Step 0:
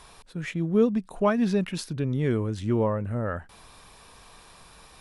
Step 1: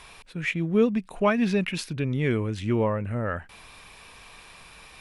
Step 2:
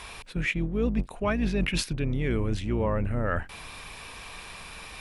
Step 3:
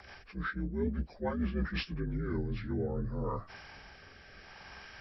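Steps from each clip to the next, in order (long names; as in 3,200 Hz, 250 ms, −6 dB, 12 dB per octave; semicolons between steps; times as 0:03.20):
parametric band 2,400 Hz +10 dB 0.86 octaves
sub-octave generator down 2 octaves, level −1 dB; reversed playback; downward compressor 6 to 1, threshold −29 dBFS, peak gain reduction 14.5 dB; reversed playback; level +5.5 dB
partials spread apart or drawn together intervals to 82%; rotating-speaker cabinet horn 6 Hz, later 0.75 Hz, at 0:02.00; level −4.5 dB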